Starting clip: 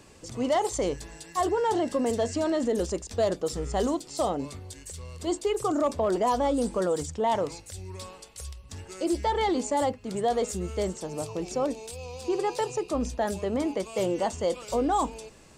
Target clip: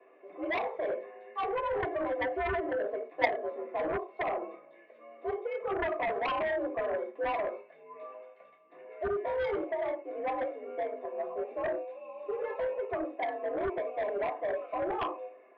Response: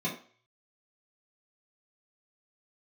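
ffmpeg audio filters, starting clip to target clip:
-filter_complex "[0:a]highpass=f=340:t=q:w=0.5412,highpass=f=340:t=q:w=1.307,lowpass=f=2.2k:t=q:w=0.5176,lowpass=f=2.2k:t=q:w=0.7071,lowpass=f=2.2k:t=q:w=1.932,afreqshift=68[a];[1:a]atrim=start_sample=2205,afade=t=out:st=0.2:d=0.01,atrim=end_sample=9261[b];[a][b]afir=irnorm=-1:irlink=0,aeval=exprs='0.708*(cos(1*acos(clip(val(0)/0.708,-1,1)))-cos(1*PI/2))+0.355*(cos(3*acos(clip(val(0)/0.708,-1,1)))-cos(3*PI/2))+0.0501*(cos(7*acos(clip(val(0)/0.708,-1,1)))-cos(7*PI/2))':c=same,volume=-9dB"

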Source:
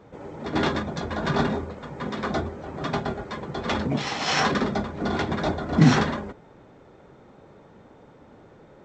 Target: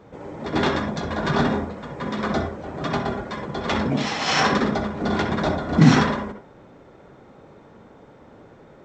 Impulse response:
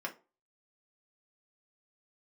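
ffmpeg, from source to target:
-filter_complex "[0:a]asplit=2[a][b];[1:a]atrim=start_sample=2205,adelay=63[c];[b][c]afir=irnorm=-1:irlink=0,volume=-8dB[d];[a][d]amix=inputs=2:normalize=0,volume=2dB"

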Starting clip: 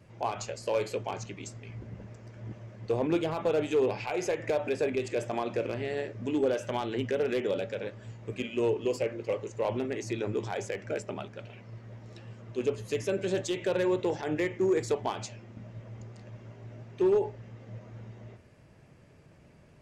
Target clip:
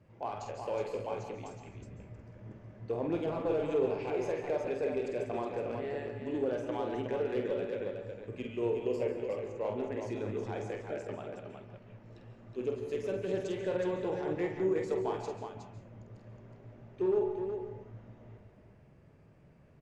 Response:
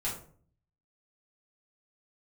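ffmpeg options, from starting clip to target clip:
-filter_complex "[0:a]highshelf=f=2.9k:g=-12,aecho=1:1:48|367:0.501|0.501,asplit=2[a][b];[1:a]atrim=start_sample=2205,adelay=135[c];[b][c]afir=irnorm=-1:irlink=0,volume=-12.5dB[d];[a][d]amix=inputs=2:normalize=0,volume=-5.5dB"

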